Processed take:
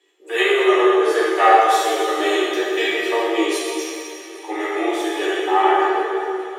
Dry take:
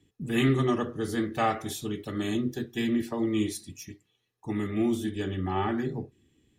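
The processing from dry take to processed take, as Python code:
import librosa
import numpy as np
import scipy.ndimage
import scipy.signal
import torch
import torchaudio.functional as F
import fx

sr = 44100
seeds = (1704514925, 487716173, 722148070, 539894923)

p1 = scipy.signal.sosfilt(scipy.signal.butter(12, 360.0, 'highpass', fs=sr, output='sos'), x)
p2 = fx.high_shelf(p1, sr, hz=6400.0, db=-11.5)
p3 = fx.rider(p2, sr, range_db=10, speed_s=0.5)
p4 = p2 + (p3 * 10.0 ** (-1.0 / 20.0))
p5 = fx.doubler(p4, sr, ms=13.0, db=-2.0)
p6 = p5 + fx.echo_wet_highpass(p5, sr, ms=407, feedback_pct=80, hz=1500.0, wet_db=-20.0, dry=0)
p7 = fx.rev_plate(p6, sr, seeds[0], rt60_s=2.6, hf_ratio=0.8, predelay_ms=0, drr_db=-5.5)
y = p7 * 10.0 ** (3.0 / 20.0)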